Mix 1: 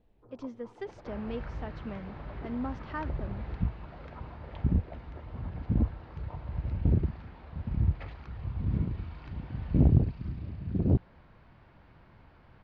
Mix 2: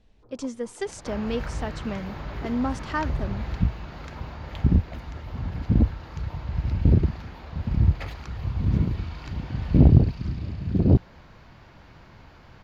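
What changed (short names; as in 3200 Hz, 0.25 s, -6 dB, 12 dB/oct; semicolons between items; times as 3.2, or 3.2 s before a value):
speech +8.0 dB; second sound +7.0 dB; master: remove air absorption 260 m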